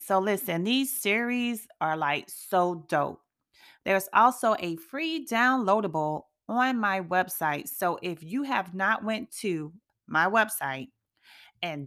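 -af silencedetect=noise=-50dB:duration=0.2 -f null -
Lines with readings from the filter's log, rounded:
silence_start: 3.16
silence_end: 3.57 | silence_duration: 0.41
silence_start: 6.22
silence_end: 6.49 | silence_duration: 0.26
silence_start: 9.77
silence_end: 10.08 | silence_duration: 0.31
silence_start: 10.88
silence_end: 11.26 | silence_duration: 0.38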